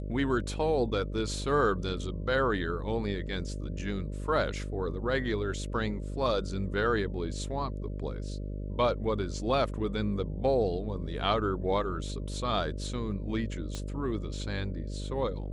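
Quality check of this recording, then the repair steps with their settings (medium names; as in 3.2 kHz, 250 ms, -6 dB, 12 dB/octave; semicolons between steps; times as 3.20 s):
buzz 50 Hz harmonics 12 -36 dBFS
13.75 s: pop -23 dBFS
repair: de-click; de-hum 50 Hz, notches 12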